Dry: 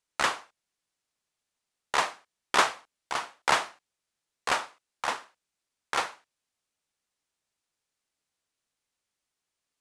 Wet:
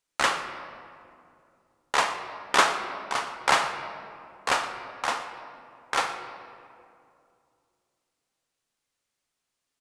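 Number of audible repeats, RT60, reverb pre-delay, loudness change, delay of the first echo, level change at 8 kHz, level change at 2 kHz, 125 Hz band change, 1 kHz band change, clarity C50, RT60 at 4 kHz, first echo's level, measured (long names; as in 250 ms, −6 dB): 1, 2.5 s, 4 ms, +2.0 dB, 119 ms, +2.5 dB, +3.0 dB, +3.5 dB, +3.0 dB, 7.5 dB, 1.4 s, −18.0 dB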